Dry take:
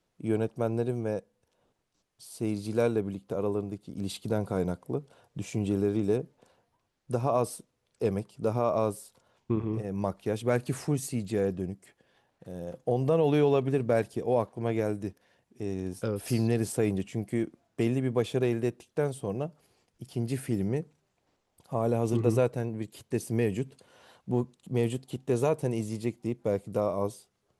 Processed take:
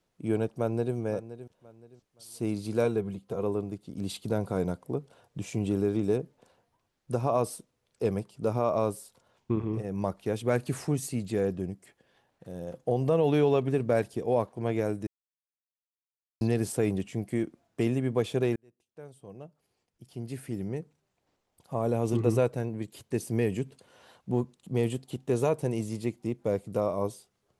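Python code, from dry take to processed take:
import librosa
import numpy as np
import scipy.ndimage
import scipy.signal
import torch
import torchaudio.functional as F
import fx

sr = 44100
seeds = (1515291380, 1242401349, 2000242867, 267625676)

y = fx.echo_throw(x, sr, start_s=0.46, length_s=0.49, ms=520, feedback_pct=30, wet_db=-14.0)
y = fx.notch_comb(y, sr, f0_hz=290.0, at=(2.84, 3.43))
y = fx.edit(y, sr, fx.silence(start_s=15.07, length_s=1.34),
    fx.fade_in_span(start_s=18.56, length_s=3.61), tone=tone)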